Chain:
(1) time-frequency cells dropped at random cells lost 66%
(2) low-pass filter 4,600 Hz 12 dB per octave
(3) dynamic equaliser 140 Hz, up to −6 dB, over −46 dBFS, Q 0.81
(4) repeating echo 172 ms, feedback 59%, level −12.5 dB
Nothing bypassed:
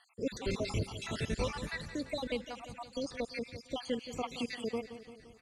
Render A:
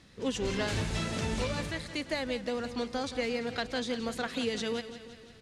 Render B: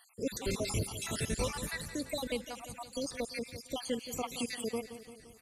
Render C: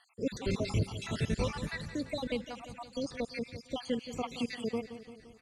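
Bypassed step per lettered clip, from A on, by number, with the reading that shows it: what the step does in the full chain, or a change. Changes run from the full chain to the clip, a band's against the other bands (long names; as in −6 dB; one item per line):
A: 1, 125 Hz band −2.0 dB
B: 2, 8 kHz band +10.0 dB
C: 3, change in momentary loudness spread +2 LU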